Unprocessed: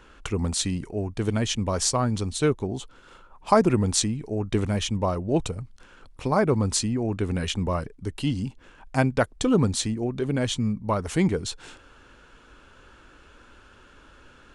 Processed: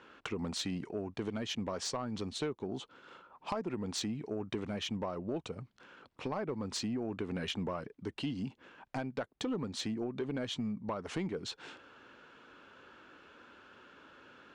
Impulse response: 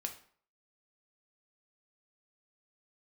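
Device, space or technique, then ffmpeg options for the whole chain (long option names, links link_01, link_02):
AM radio: -af "highpass=180,lowpass=4200,acompressor=threshold=-28dB:ratio=10,asoftclip=type=tanh:threshold=-23dB,volume=-3dB"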